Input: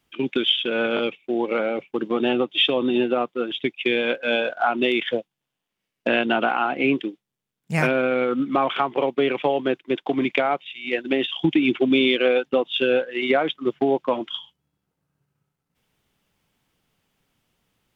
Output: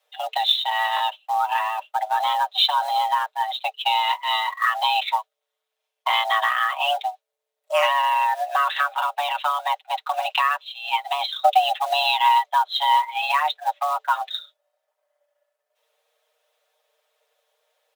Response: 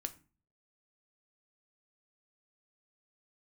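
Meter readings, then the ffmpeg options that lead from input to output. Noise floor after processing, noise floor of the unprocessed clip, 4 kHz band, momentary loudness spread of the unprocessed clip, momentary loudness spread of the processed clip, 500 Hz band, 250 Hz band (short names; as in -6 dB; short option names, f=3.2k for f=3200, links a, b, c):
-82 dBFS, -83 dBFS, +2.5 dB, 7 LU, 7 LU, -9.5 dB, under -40 dB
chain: -af "acrusher=bits=6:mode=log:mix=0:aa=0.000001,aecho=1:1:6.1:0.82,afreqshift=440,volume=-2dB"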